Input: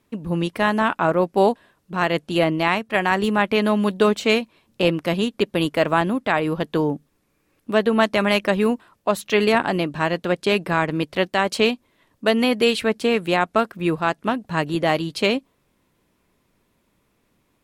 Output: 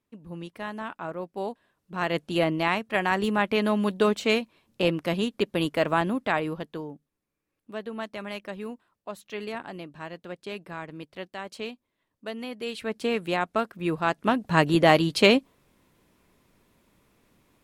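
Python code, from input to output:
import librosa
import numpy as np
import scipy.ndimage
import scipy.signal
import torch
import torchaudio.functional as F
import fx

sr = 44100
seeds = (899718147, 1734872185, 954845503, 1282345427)

y = fx.gain(x, sr, db=fx.line((1.45, -15.5), (2.17, -5.0), (6.35, -5.0), (6.89, -17.0), (12.6, -17.0), (13.03, -7.0), (13.8, -7.0), (14.55, 2.0)))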